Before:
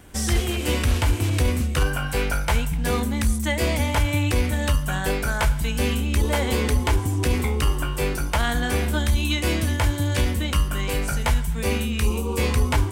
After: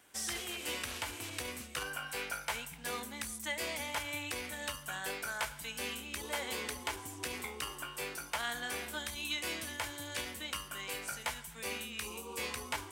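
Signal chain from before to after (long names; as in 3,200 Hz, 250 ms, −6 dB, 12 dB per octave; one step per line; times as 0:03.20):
high-pass filter 1,100 Hz 6 dB per octave
level −9 dB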